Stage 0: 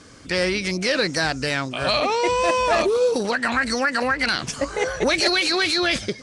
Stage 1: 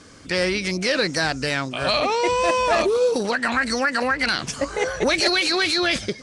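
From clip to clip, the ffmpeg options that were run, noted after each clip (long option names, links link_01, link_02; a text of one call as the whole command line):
ffmpeg -i in.wav -af "bandreject=frequency=60:width_type=h:width=6,bandreject=frequency=120:width_type=h:width=6" out.wav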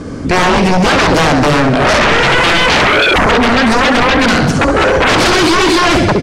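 ffmpeg -i in.wav -af "tiltshelf=frequency=1200:gain=10,aecho=1:1:67|134|201|268|335|402|469:0.447|0.255|0.145|0.0827|0.0472|0.0269|0.0153,aeval=exprs='0.75*sin(PI/2*6.31*val(0)/0.75)':channel_layout=same,volume=-4dB" out.wav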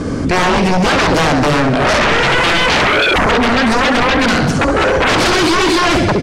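ffmpeg -i in.wav -af "alimiter=limit=-14dB:level=0:latency=1,volume=5dB" out.wav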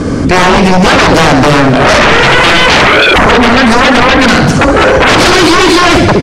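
ffmpeg -i in.wav -af "aecho=1:1:523:0.0841,volume=7dB" out.wav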